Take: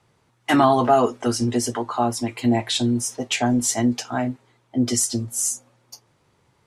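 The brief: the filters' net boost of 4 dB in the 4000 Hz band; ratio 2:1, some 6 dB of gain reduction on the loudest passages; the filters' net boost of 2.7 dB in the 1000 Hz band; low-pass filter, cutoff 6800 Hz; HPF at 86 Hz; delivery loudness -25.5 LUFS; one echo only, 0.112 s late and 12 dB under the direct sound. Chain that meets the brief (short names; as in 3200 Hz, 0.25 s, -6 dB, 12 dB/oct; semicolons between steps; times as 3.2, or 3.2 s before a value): HPF 86 Hz; LPF 6800 Hz; bell 1000 Hz +3.5 dB; bell 4000 Hz +5.5 dB; compressor 2:1, threshold -20 dBFS; echo 0.112 s -12 dB; gain -2 dB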